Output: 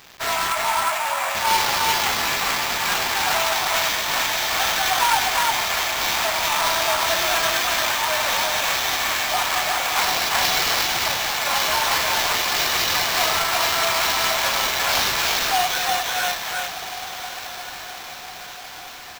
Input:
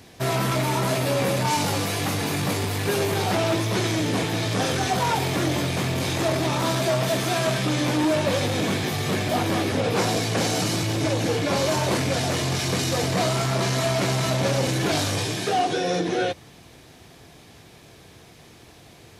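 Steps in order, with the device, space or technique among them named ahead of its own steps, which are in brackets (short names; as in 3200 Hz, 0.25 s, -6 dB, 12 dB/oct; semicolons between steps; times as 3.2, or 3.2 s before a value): 0.52–1.35 Bessel low-pass 2700 Hz, order 2; inverse Chebyshev high-pass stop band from 400 Hz, stop band 40 dB; echo 0.355 s -3 dB; diffused feedback echo 1.284 s, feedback 54%, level -11.5 dB; early 8-bit sampler (sample-rate reducer 9600 Hz, jitter 0%; bit-crush 8-bit); gain +6 dB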